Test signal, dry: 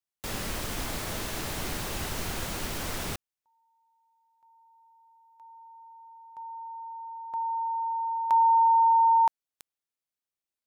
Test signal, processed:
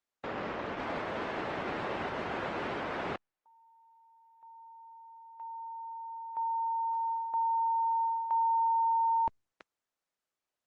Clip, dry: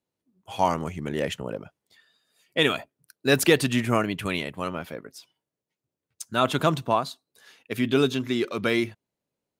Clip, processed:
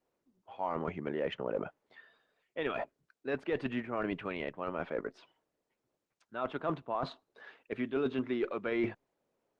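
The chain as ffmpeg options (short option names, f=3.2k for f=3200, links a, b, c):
-af "highpass=470,lowpass=2.5k,areverse,acompressor=threshold=-36dB:ratio=6:attack=0.11:release=583:knee=1:detection=peak,areverse,aemphasis=mode=reproduction:type=riaa,volume=8dB" -ar 48000 -c:a libopus -b:a 20k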